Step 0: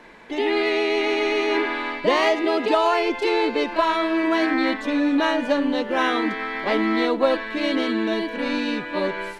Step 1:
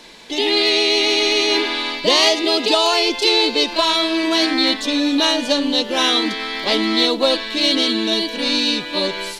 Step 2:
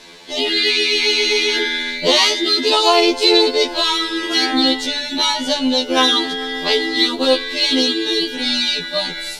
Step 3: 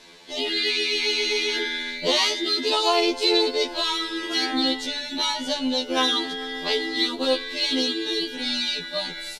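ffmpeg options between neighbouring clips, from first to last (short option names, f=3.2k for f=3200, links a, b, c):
-af "highshelf=f=2.7k:t=q:w=1.5:g=14,volume=2dB"
-af "afftfilt=real='re*2*eq(mod(b,4),0)':imag='im*2*eq(mod(b,4),0)':win_size=2048:overlap=0.75,volume=3.5dB"
-af "aresample=32000,aresample=44100,volume=-7.5dB"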